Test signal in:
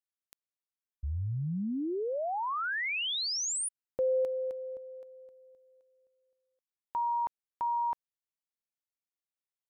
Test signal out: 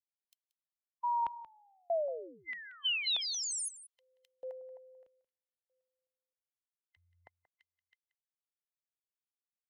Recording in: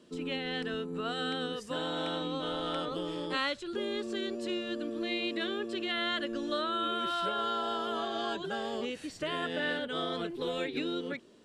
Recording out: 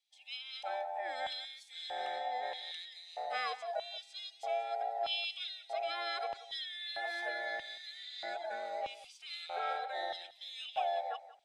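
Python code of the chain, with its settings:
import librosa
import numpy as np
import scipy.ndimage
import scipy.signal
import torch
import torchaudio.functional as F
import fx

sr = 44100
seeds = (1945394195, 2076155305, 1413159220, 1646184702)

p1 = fx.band_invert(x, sr, width_hz=1000)
p2 = fx.filter_lfo_highpass(p1, sr, shape='square', hz=0.79, low_hz=720.0, high_hz=3100.0, q=2.5)
p3 = p2 + fx.echo_single(p2, sr, ms=181, db=-14.5, dry=0)
p4 = fx.band_widen(p3, sr, depth_pct=40)
y = p4 * librosa.db_to_amplitude(-7.5)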